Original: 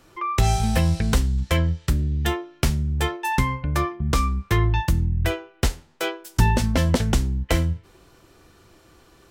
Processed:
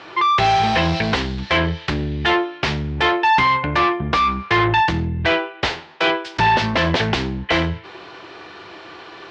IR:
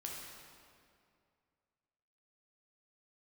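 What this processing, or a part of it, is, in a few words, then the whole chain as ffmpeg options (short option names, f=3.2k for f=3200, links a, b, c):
overdrive pedal into a guitar cabinet: -filter_complex "[0:a]asplit=2[a][b];[b]highpass=f=720:p=1,volume=29dB,asoftclip=type=tanh:threshold=-6dB[c];[a][c]amix=inputs=2:normalize=0,lowpass=f=2.8k:p=1,volume=-6dB,highpass=100,equalizer=f=140:t=q:w=4:g=-5,equalizer=f=240:t=q:w=4:g=-9,equalizer=f=530:t=q:w=4:g=-5,equalizer=f=1.3k:t=q:w=4:g=-4,lowpass=f=4.5k:w=0.5412,lowpass=f=4.5k:w=1.3066"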